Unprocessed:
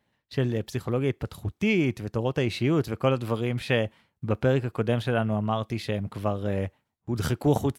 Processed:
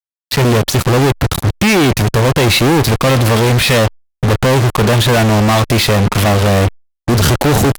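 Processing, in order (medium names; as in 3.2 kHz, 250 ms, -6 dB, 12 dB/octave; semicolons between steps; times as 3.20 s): fuzz box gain 50 dB, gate -42 dBFS; trim +4 dB; Opus 128 kbps 48 kHz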